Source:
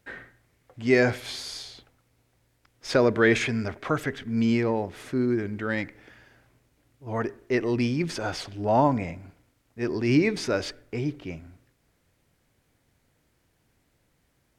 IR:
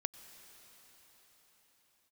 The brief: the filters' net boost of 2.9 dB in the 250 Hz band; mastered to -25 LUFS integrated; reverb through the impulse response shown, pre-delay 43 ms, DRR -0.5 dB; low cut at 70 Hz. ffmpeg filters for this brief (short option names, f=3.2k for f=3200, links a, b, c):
-filter_complex "[0:a]highpass=70,equalizer=f=250:t=o:g=3.5,asplit=2[a][b];[1:a]atrim=start_sample=2205,adelay=43[c];[b][c]afir=irnorm=-1:irlink=0,volume=1dB[d];[a][d]amix=inputs=2:normalize=0,volume=-3.5dB"